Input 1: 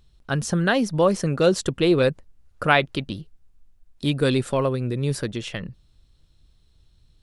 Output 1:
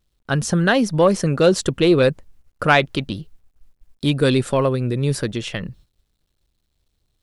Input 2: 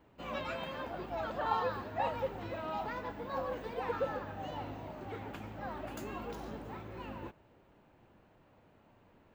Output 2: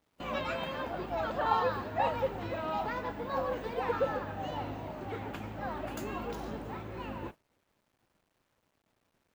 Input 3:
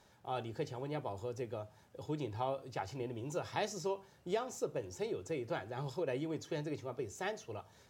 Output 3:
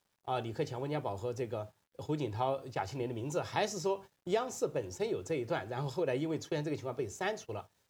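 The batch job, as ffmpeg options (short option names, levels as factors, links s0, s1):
-af "agate=range=0.141:threshold=0.00355:ratio=16:detection=peak,acontrast=29,acrusher=bits=11:mix=0:aa=0.000001,volume=0.891"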